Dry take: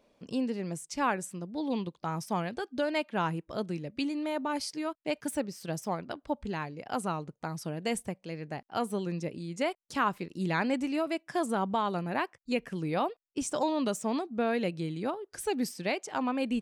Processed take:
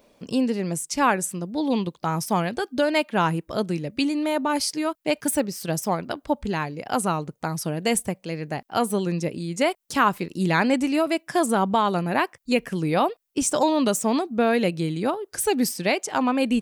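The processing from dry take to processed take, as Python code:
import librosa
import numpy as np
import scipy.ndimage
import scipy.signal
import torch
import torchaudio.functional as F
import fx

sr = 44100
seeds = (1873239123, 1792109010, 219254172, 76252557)

y = fx.high_shelf(x, sr, hz=9900.0, db=11.5)
y = F.gain(torch.from_numpy(y), 8.5).numpy()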